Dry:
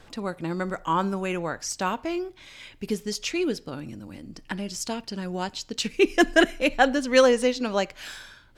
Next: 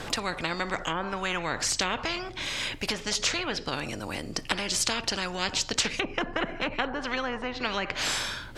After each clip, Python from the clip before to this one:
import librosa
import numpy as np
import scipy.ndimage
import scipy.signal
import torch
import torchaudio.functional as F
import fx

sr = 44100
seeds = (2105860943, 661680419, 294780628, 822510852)

y = fx.env_lowpass_down(x, sr, base_hz=800.0, full_db=-18.0)
y = fx.spectral_comp(y, sr, ratio=4.0)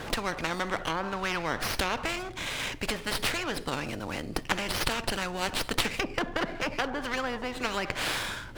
y = fx.running_max(x, sr, window=5)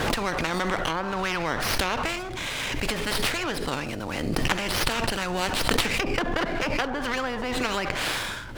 y = fx.pre_swell(x, sr, db_per_s=24.0)
y = y * 10.0 ** (2.5 / 20.0)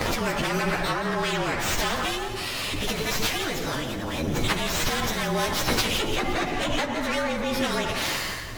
y = fx.partial_stretch(x, sr, pct=110)
y = fx.echo_feedback(y, sr, ms=172, feedback_pct=51, wet_db=-10.5)
y = y * 10.0 ** (4.0 / 20.0)